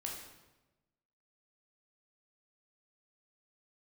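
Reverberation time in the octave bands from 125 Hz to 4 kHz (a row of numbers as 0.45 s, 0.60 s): 1.4 s, 1.2 s, 1.1 s, 1.0 s, 0.90 s, 0.85 s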